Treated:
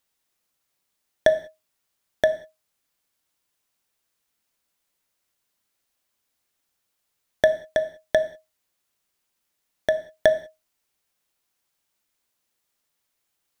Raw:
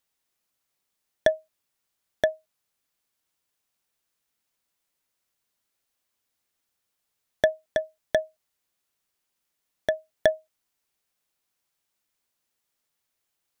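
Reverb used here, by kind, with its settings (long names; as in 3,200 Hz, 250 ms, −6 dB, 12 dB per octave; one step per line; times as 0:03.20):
reverb whose tail is shaped and stops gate 220 ms falling, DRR 11 dB
level +2.5 dB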